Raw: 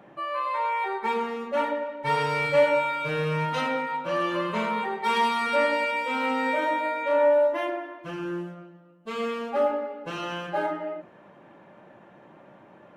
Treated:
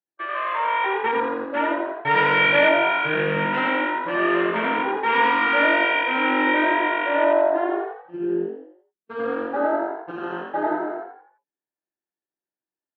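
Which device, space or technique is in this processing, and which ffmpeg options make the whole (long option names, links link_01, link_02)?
frequency-shifting delay pedal into a guitar cabinet: -filter_complex "[0:a]afwtdn=0.0251,agate=range=-37dB:threshold=-34dB:ratio=16:detection=peak,asplit=6[link_01][link_02][link_03][link_04][link_05][link_06];[link_02]adelay=85,afreqshift=47,volume=-3dB[link_07];[link_03]adelay=170,afreqshift=94,volume=-11dB[link_08];[link_04]adelay=255,afreqshift=141,volume=-18.9dB[link_09];[link_05]adelay=340,afreqshift=188,volume=-26.9dB[link_10];[link_06]adelay=425,afreqshift=235,volume=-34.8dB[link_11];[link_01][link_07][link_08][link_09][link_10][link_11]amix=inputs=6:normalize=0,highpass=110,equalizer=frequency=160:width_type=q:width=4:gain=-6,equalizer=frequency=220:width_type=q:width=4:gain=-7,equalizer=frequency=330:width_type=q:width=4:gain=5,equalizer=frequency=580:width_type=q:width=4:gain=-7,equalizer=frequency=1100:width_type=q:width=4:gain=-6,equalizer=frequency=1700:width_type=q:width=4:gain=6,lowpass=frequency=4300:width=0.5412,lowpass=frequency=4300:width=1.3066,asettb=1/sr,asplit=3[link_12][link_13][link_14];[link_12]atrim=end=2.114[link_15];[link_13]atrim=start=2.11:end=2.69,asetpts=PTS-STARTPTS,afade=type=in:duration=0.004:curve=qsin,afade=type=out:start_time=0.576:duration=0.004:curve=qsin,equalizer=frequency=3300:width=0.48:gain=4[link_16];[link_14]atrim=start=2.686[link_17];[link_15][link_16]acrossfade=duration=0.004:curve1=hsin:curve2=qsin[link_18];[link_18][link_17]acrossfade=duration=0.004:curve1=qsin:curve2=hsin,volume=5dB"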